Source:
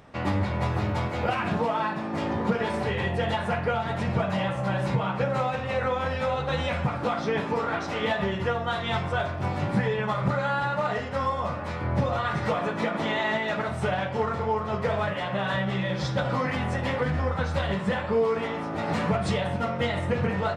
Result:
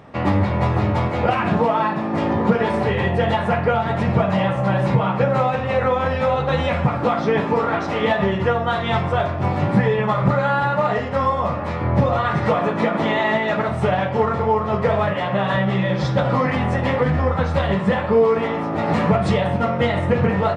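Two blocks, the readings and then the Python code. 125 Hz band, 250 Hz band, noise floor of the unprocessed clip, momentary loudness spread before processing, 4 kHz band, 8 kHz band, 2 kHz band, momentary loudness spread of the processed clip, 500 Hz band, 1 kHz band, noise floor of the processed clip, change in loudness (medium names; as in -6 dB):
+8.0 dB, +8.5 dB, -32 dBFS, 2 LU, +3.5 dB, no reading, +5.0 dB, 3 LU, +8.0 dB, +7.5 dB, -24 dBFS, +7.5 dB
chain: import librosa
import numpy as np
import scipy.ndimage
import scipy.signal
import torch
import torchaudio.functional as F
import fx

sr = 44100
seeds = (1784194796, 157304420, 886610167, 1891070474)

y = scipy.signal.sosfilt(scipy.signal.butter(2, 69.0, 'highpass', fs=sr, output='sos'), x)
y = fx.high_shelf(y, sr, hz=3300.0, db=-10.0)
y = fx.notch(y, sr, hz=1500.0, q=21.0)
y = F.gain(torch.from_numpy(y), 8.5).numpy()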